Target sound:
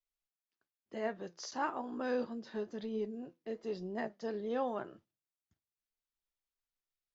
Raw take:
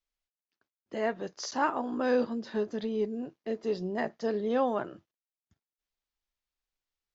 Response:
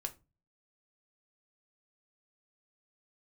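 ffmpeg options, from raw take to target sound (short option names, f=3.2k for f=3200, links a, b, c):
-filter_complex "[0:a]flanger=delay=4.3:depth=2.3:regen=82:speed=1:shape=triangular,asplit=2[a][b];[1:a]atrim=start_sample=2205[c];[b][c]afir=irnorm=-1:irlink=0,volume=-15dB[d];[a][d]amix=inputs=2:normalize=0,volume=-4dB"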